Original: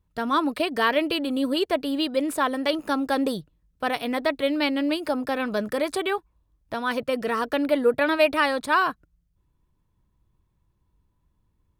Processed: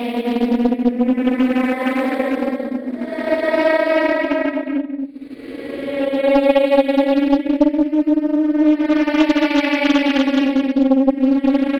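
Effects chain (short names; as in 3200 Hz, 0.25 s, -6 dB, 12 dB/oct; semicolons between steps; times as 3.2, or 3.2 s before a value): graphic EQ 250/500/2000/4000 Hz +10/+5/+6/-5 dB; Paulstretch 16×, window 0.10 s, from 4.04; outdoor echo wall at 38 m, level -7 dB; transient shaper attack +3 dB, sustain -6 dB; Doppler distortion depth 0.61 ms; gain -1 dB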